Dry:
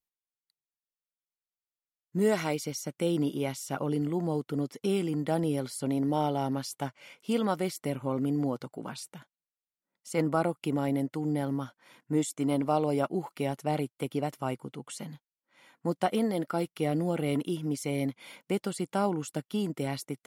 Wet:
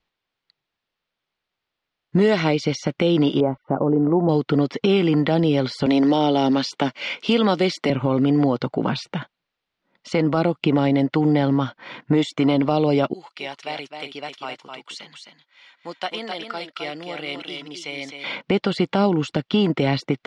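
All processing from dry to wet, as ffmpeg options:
ffmpeg -i in.wav -filter_complex "[0:a]asettb=1/sr,asplit=3[link_01][link_02][link_03];[link_01]atrim=end=3.404[link_04];[link_02]atrim=start=3.4:end=4.29,asetpts=PTS-STARTPTS,afade=type=in:duration=0.004:curve=qsin,afade=type=out:start_time=0.886:duration=0.004:curve=qsin,lowpass=frequency=1100:width=0.5412,lowpass=frequency=1100:width=1.3066,equalizer=frequency=97:width_type=o:width=1.6:gain=-7[link_05];[link_03]atrim=start=4.286[link_06];[link_04][link_05]acrossfade=duration=0.004:curve1=hsin:curve2=qsin[link_07];[link_07][link_06]acrossfade=duration=0.004:curve1=qsin:curve2=hsin,asettb=1/sr,asplit=3[link_08][link_09][link_10];[link_08]atrim=end=5.864[link_11];[link_09]atrim=start=5.86:end=7.9,asetpts=PTS-STARTPTS,afade=type=in:duration=0.004:curve=qsin,afade=type=out:start_time=2.036:duration=0.004:curve=qsin,highpass=frequency=180:width=0.5412,highpass=frequency=180:width=1.3066,equalizer=frequency=9200:width_type=o:width=2.8:gain=10.5[link_12];[link_10]atrim=start=7.896[link_13];[link_11][link_12]acrossfade=duration=0.004:curve1=hsin:curve2=qsin[link_14];[link_14][link_13]acrossfade=duration=0.004:curve1=qsin:curve2=hsin,asettb=1/sr,asplit=3[link_15][link_16][link_17];[link_15]atrim=end=13.134[link_18];[link_16]atrim=start=13.13:end=18.24,asetpts=PTS-STARTPTS,afade=type=in:duration=0.004:curve=qsin,afade=type=out:start_time=5.106:duration=0.004:curve=qsin,aderivative,aecho=1:1:258|261:0.126|0.473,atrim=end_sample=225351[link_19];[link_17]atrim=start=18.236[link_20];[link_18][link_19]acrossfade=duration=0.004:curve1=hsin:curve2=qsin[link_21];[link_21][link_20]acrossfade=duration=0.004:curve1=qsin:curve2=hsin,lowpass=frequency=4100:width=0.5412,lowpass=frequency=4100:width=1.3066,acrossover=split=530|3000[link_22][link_23][link_24];[link_22]acompressor=threshold=-38dB:ratio=4[link_25];[link_23]acompressor=threshold=-45dB:ratio=4[link_26];[link_24]acompressor=threshold=-51dB:ratio=4[link_27];[link_25][link_26][link_27]amix=inputs=3:normalize=0,alimiter=level_in=27.5dB:limit=-1dB:release=50:level=0:latency=1,volume=-7.5dB" out.wav

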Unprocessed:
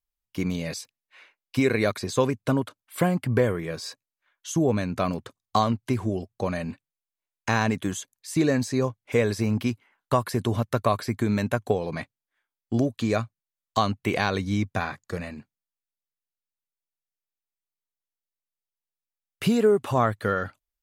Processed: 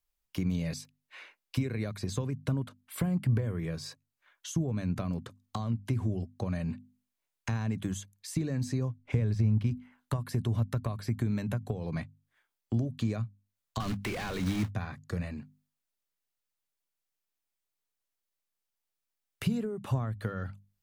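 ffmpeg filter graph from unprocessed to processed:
ffmpeg -i in.wav -filter_complex "[0:a]asettb=1/sr,asplit=3[link_01][link_02][link_03];[link_01]atrim=end=8.984[link_04];[link_02]atrim=start=8.98:end=9.71,asetpts=PTS-STARTPTS,afade=type=in:duration=0.004:curve=qsin,afade=type=out:start_time=0.726:duration=0.004:curve=qsin,lowshelf=frequency=150:gain=11.5,adynamicsmooth=sensitivity=7:basefreq=4100[link_05];[link_03]atrim=start=9.706[link_06];[link_04][link_05]acrossfade=duration=0.004:curve1=hsin:curve2=qsin[link_07];[link_07][link_06]acrossfade=duration=0.004:curve1=qsin:curve2=hsin,asettb=1/sr,asplit=3[link_08][link_09][link_10];[link_08]atrim=end=13.804[link_11];[link_09]atrim=start=13.8:end=14.71,asetpts=PTS-STARTPTS,afade=type=in:duration=0.004:curve=qsin,afade=type=out:start_time=0.906:duration=0.004:curve=qsin,highpass=frequency=52:width=0.5412,highpass=frequency=52:width=1.3066,acrusher=bits=3:mode=log:mix=0:aa=0.000001,asplit=2[link_12][link_13];[link_13]highpass=frequency=720:poles=1,volume=31dB,asoftclip=type=tanh:threshold=-6.5dB[link_14];[link_12][link_14]amix=inputs=2:normalize=0,lowpass=frequency=5500:poles=1,volume=-6dB[link_15];[link_10]atrim=start=14.706[link_16];[link_11][link_15]acrossfade=duration=0.004:curve1=hsin:curve2=qsin[link_17];[link_17][link_16]acrossfade=duration=0.004:curve1=qsin:curve2=hsin,acompressor=threshold=-24dB:ratio=6,bandreject=frequency=50:width_type=h:width=6,bandreject=frequency=100:width_type=h:width=6,bandreject=frequency=150:width_type=h:width=6,bandreject=frequency=200:width_type=h:width=6,bandreject=frequency=250:width_type=h:width=6,acrossover=split=190[link_18][link_19];[link_19]acompressor=threshold=-50dB:ratio=2.5[link_20];[link_18][link_20]amix=inputs=2:normalize=0,volume=4.5dB" out.wav

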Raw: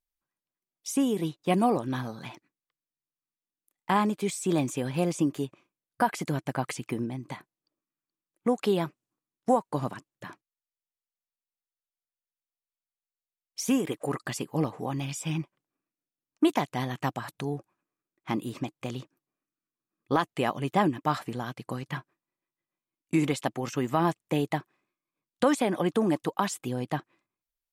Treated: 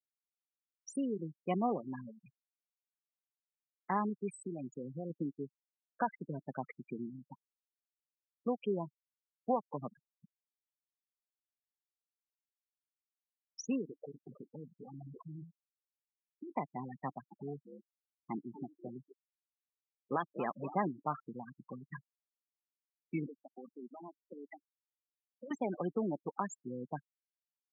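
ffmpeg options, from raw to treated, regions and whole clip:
ffmpeg -i in.wav -filter_complex "[0:a]asettb=1/sr,asplit=3[link_01][link_02][link_03];[link_01]atrim=end=4.464[link_04];[link_02]atrim=start=4.46:end=5.1,asetpts=PTS-STARTPTS,afade=type=in:duration=0.004:curve=qsin,afade=type=out:start_time=0.636:duration=0.004:curve=qsin,acompressor=threshold=-26dB:ratio=8:attack=3.2:release=140:knee=1:detection=peak,highpass=58[link_05];[link_03]atrim=start=5.096[link_06];[link_04][link_05]acrossfade=duration=0.004:curve1=hsin:curve2=qsin[link_07];[link_07][link_06]acrossfade=duration=0.004:curve1=qsin:curve2=hsin,asettb=1/sr,asplit=3[link_08][link_09][link_10];[link_08]atrim=end=13.864[link_11];[link_09]atrim=start=13.86:end=16.52,asetpts=PTS-STARTPTS,afade=type=in:duration=0.004:curve=qsin,afade=type=out:start_time=2.656:duration=0.004:curve=qsin,bandreject=frequency=55.29:width_type=h:width=4,bandreject=frequency=110.58:width_type=h:width=4,bandreject=frequency=165.87:width_type=h:width=4,bandreject=frequency=221.16:width_type=h:width=4,bandreject=frequency=276.45:width_type=h:width=4,bandreject=frequency=331.74:width_type=h:width=4,bandreject=frequency=387.03:width_type=h:width=4,acompressor=threshold=-30dB:ratio=10:attack=3.2:release=140:knee=1:detection=peak,acrusher=samples=19:mix=1:aa=0.000001:lfo=1:lforange=11.4:lforate=3.3[link_12];[link_10]atrim=start=16.516[link_13];[link_11][link_12]acrossfade=duration=0.004:curve1=hsin:curve2=qsin[link_14];[link_14][link_13]acrossfade=duration=0.004:curve1=qsin:curve2=hsin,asettb=1/sr,asplit=3[link_15][link_16][link_17];[link_15]atrim=end=17.074[link_18];[link_16]atrim=start=17.07:end=20.84,asetpts=PTS-STARTPTS,afade=type=in:duration=0.004:curve=qsin,afade=type=out:start_time=3.766:duration=0.004:curve=qsin,agate=range=-33dB:threshold=-53dB:ratio=3:release=100:detection=peak,asplit=9[link_19][link_20][link_21][link_22][link_23][link_24][link_25][link_26][link_27];[link_20]adelay=239,afreqshift=64,volume=-9.5dB[link_28];[link_21]adelay=478,afreqshift=128,volume=-13.8dB[link_29];[link_22]adelay=717,afreqshift=192,volume=-18.1dB[link_30];[link_23]adelay=956,afreqshift=256,volume=-22.4dB[link_31];[link_24]adelay=1195,afreqshift=320,volume=-26.7dB[link_32];[link_25]adelay=1434,afreqshift=384,volume=-31dB[link_33];[link_26]adelay=1673,afreqshift=448,volume=-35.3dB[link_34];[link_27]adelay=1912,afreqshift=512,volume=-39.6dB[link_35];[link_19][link_28][link_29][link_30][link_31][link_32][link_33][link_34][link_35]amix=inputs=9:normalize=0,atrim=end_sample=166257[link_36];[link_17]atrim=start=20.836[link_37];[link_18][link_36]acrossfade=duration=0.004:curve1=hsin:curve2=qsin[link_38];[link_38][link_37]acrossfade=duration=0.004:curve1=qsin:curve2=hsin,asettb=1/sr,asplit=3[link_39][link_40][link_41];[link_39]atrim=end=23.264[link_42];[link_40]atrim=start=23.26:end=25.51,asetpts=PTS-STARTPTS,afade=type=in:duration=0.004:curve=qsin,afade=type=out:start_time=2.246:duration=0.004:curve=qsin,highpass=frequency=210:width=0.5412,highpass=frequency=210:width=1.3066,acompressor=threshold=-30dB:ratio=16:attack=3.2:release=140:knee=1:detection=peak,aeval=exprs='clip(val(0),-1,0.02)':channel_layout=same[link_43];[link_41]atrim=start=25.506[link_44];[link_42][link_43]acrossfade=duration=0.004:curve1=hsin:curve2=qsin[link_45];[link_45][link_44]acrossfade=duration=0.004:curve1=qsin:curve2=hsin,afftfilt=real='re*gte(hypot(re,im),0.0708)':imag='im*gte(hypot(re,im),0.0708)':win_size=1024:overlap=0.75,highpass=frequency=150:width=0.5412,highpass=frequency=150:width=1.3066,equalizer=frequency=310:width_type=o:width=0.22:gain=-6,volume=-8.5dB" out.wav

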